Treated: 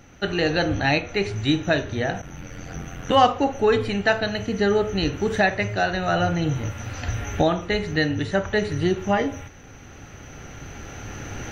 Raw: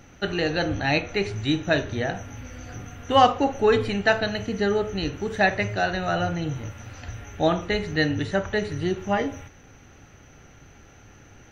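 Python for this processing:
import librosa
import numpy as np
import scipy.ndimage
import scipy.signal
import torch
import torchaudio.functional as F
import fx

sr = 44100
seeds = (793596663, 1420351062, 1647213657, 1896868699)

y = fx.recorder_agc(x, sr, target_db=-10.5, rise_db_per_s=6.3, max_gain_db=30)
y = fx.ring_mod(y, sr, carrier_hz=44.0, at=(2.21, 3.11), fade=0.02)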